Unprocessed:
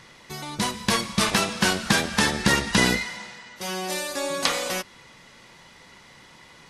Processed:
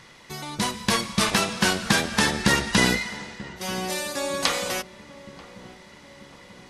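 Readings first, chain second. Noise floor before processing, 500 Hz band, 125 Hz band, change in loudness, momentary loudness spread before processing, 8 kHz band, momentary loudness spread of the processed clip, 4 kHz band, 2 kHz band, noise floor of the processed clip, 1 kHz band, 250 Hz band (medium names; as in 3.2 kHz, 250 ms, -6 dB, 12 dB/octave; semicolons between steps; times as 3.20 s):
-51 dBFS, 0.0 dB, +0.5 dB, 0.0 dB, 15 LU, 0.0 dB, 17 LU, 0.0 dB, 0.0 dB, -49 dBFS, 0.0 dB, 0.0 dB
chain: filtered feedback delay 937 ms, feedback 63%, low-pass 830 Hz, level -16 dB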